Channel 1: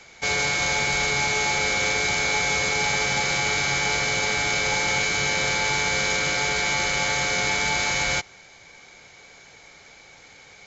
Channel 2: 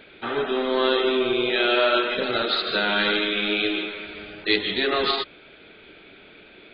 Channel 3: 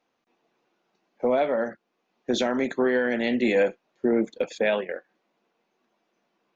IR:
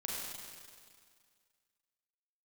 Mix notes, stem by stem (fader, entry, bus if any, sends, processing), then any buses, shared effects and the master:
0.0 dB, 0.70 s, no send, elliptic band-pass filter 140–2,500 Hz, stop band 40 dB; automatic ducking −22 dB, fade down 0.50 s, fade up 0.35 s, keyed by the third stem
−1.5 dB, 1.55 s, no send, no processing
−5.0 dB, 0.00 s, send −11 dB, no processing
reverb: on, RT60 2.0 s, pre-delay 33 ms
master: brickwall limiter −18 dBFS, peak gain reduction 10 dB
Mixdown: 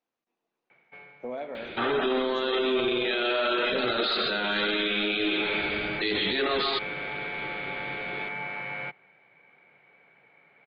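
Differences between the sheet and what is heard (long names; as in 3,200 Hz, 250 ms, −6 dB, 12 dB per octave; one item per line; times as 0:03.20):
stem 1 0.0 dB → −9.5 dB
stem 2 −1.5 dB → +7.0 dB
stem 3 −5.0 dB → −14.5 dB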